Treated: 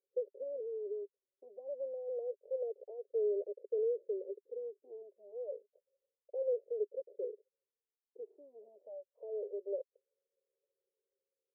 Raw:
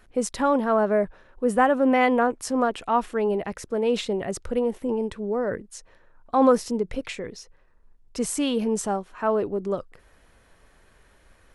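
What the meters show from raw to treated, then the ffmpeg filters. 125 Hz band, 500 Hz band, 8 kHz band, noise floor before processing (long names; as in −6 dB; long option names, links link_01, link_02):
below −40 dB, −12.5 dB, below −40 dB, −58 dBFS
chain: -filter_complex "[0:a]anlmdn=0.251,alimiter=limit=-15dB:level=0:latency=1:release=33,acompressor=threshold=-42dB:ratio=2,aeval=exprs='clip(val(0),-1,0.00708)':channel_layout=same,asuperpass=centerf=480:order=8:qfactor=2.5,asplit=2[link_01][link_02];[link_02]afreqshift=-0.28[link_03];[link_01][link_03]amix=inputs=2:normalize=1,volume=7.5dB"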